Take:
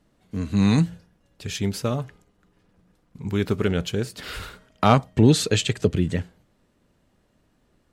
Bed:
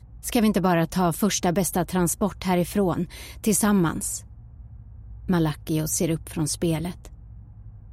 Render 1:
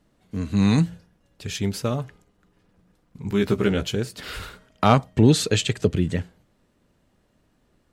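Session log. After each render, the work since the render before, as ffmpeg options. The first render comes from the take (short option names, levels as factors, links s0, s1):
-filter_complex "[0:a]asettb=1/sr,asplit=3[s0][s1][s2];[s0]atrim=end=3.294[s3];[s1]atrim=start=3.29:end=3.96,asetpts=PTS-STARTPTS,afade=t=in:d=0.004:c=qsin,afade=t=out:st=0.666:d=0.004:c=qsin,asplit=2[s4][s5];[s5]adelay=15,volume=0.708[s6];[s4][s6]amix=inputs=2:normalize=0,atrim=end_sample=29547[s7];[s2]atrim=start=3.956[s8];[s3][s7]acrossfade=d=0.004:c1=hsin:c2=qsin[s9];[s9][s8]acrossfade=d=0.004:c1=qsin:c2=hsin"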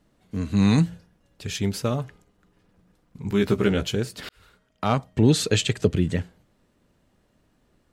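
-filter_complex "[0:a]asplit=2[s0][s1];[s0]atrim=end=4.29,asetpts=PTS-STARTPTS,afade=t=out:st=4.286:d=0.004:c=hsin[s2];[s1]atrim=start=4.29,asetpts=PTS-STARTPTS,afade=t=in:d=1.25[s3];[s2][s3]concat=n=2:v=0:a=1"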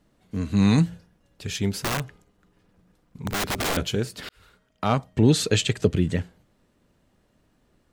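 -filter_complex "[0:a]asettb=1/sr,asplit=3[s0][s1][s2];[s0]atrim=end=1.714[s3];[s1]atrim=start=1.71:end=3.77,asetpts=PTS-STARTPTS,afade=t=in:d=0.004:c=qsin,afade=t=out:st=2.056:d=0.004:c=qsin,aeval=exprs='(mod(10.6*val(0)+1,2)-1)/10.6':c=same[s4];[s2]atrim=start=3.766[s5];[s3][s4]acrossfade=d=0.004:c1=hsin:c2=qsin[s6];[s6][s5]acrossfade=d=0.004:c1=qsin:c2=hsin"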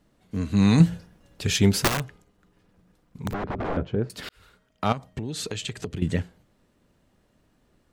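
-filter_complex "[0:a]asettb=1/sr,asplit=3[s0][s1][s2];[s0]atrim=end=0.804[s3];[s1]atrim=start=0.8:end=1.88,asetpts=PTS-STARTPTS,afade=t=in:d=0.004:c=qsin,afade=t=out:st=1.076:d=0.004:c=qsin,acontrast=71[s4];[s2]atrim=start=1.876[s5];[s3][s4]acrossfade=d=0.004:c1=hsin:c2=qsin[s6];[s6][s5]acrossfade=d=0.004:c1=qsin:c2=hsin,asettb=1/sr,asplit=3[s7][s8][s9];[s7]atrim=end=3.334[s10];[s8]atrim=start=3.33:end=4.1,asetpts=PTS-STARTPTS,afade=t=in:d=0.004:c=qsin,afade=t=out:st=0.766:d=0.004:c=qsin,lowpass=1100[s11];[s9]atrim=start=4.096[s12];[s10][s11]acrossfade=d=0.004:c1=hsin:c2=qsin[s13];[s13][s12]acrossfade=d=0.004:c1=qsin:c2=hsin,asettb=1/sr,asplit=3[s14][s15][s16];[s14]atrim=end=4.924[s17];[s15]atrim=start=4.92:end=6.02,asetpts=PTS-STARTPTS,afade=t=in:d=0.004:c=qsin,afade=t=out:st=1.096:d=0.004:c=qsin,acompressor=threshold=0.0447:ratio=12:attack=3.2:release=140:knee=1:detection=peak[s18];[s16]atrim=start=6.016[s19];[s17][s18]acrossfade=d=0.004:c1=hsin:c2=qsin[s20];[s20][s19]acrossfade=d=0.004:c1=qsin:c2=hsin"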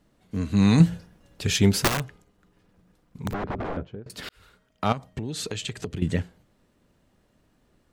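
-filter_complex "[0:a]asplit=2[s0][s1];[s0]atrim=end=4.06,asetpts=PTS-STARTPTS,afade=t=out:st=3.54:d=0.52:silence=0.0630957[s2];[s1]atrim=start=4.06,asetpts=PTS-STARTPTS,afade=t=in:d=0.004:c=hsin:silence=0.0630957[s3];[s2][s3]concat=n=2:v=0:a=1"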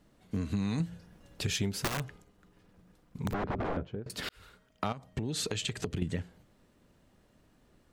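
-af "acompressor=threshold=0.0355:ratio=8"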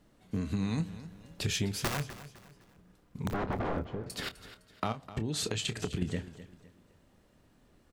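-filter_complex "[0:a]asplit=2[s0][s1];[s1]adelay=27,volume=0.266[s2];[s0][s2]amix=inputs=2:normalize=0,aecho=1:1:255|510|765:0.178|0.064|0.023"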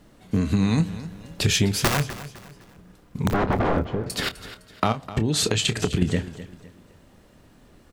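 -af "volume=3.55"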